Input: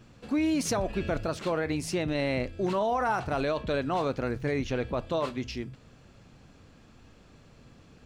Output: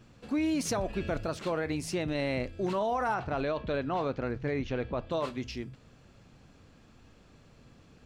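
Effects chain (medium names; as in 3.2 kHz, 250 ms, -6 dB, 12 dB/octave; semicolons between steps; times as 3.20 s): 3.14–5.11 s: Bessel low-pass 3.7 kHz, order 2; trim -2.5 dB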